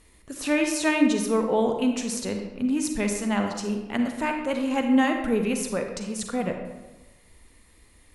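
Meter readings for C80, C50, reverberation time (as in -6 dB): 7.5 dB, 5.0 dB, 1.1 s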